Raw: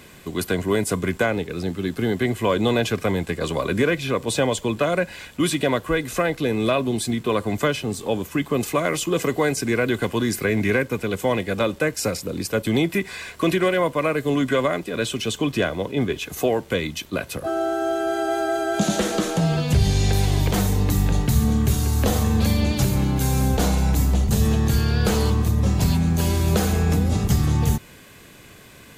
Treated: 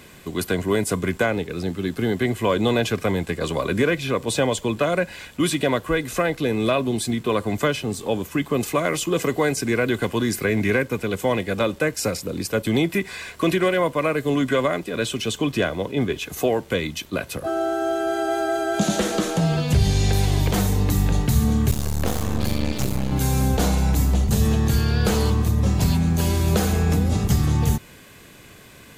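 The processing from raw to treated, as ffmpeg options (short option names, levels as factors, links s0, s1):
-filter_complex "[0:a]asettb=1/sr,asplit=3[s0][s1][s2];[s0]atrim=end=21.714[s3];[s1]atrim=start=21.71:end=23.12,asetpts=PTS-STARTPTS,afade=t=in:d=0.004:c=qsin,afade=t=out:st=1.406:d=0.004:c=qsin,aeval=exprs='max(val(0),0)':c=same[s4];[s2]atrim=start=23.116[s5];[s3][s4]acrossfade=d=0.004:c1=hsin:c2=qsin[s6];[s6][s5]acrossfade=d=0.004:c1=qsin:c2=hsin"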